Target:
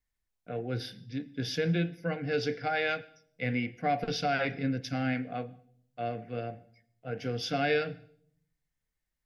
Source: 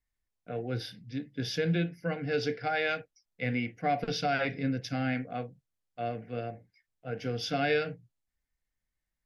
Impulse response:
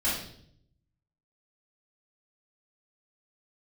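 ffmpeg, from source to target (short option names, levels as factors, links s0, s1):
-filter_complex "[0:a]asplit=2[s0][s1];[1:a]atrim=start_sample=2205,asetrate=48510,aresample=44100,adelay=81[s2];[s1][s2]afir=irnorm=-1:irlink=0,volume=0.0316[s3];[s0][s3]amix=inputs=2:normalize=0"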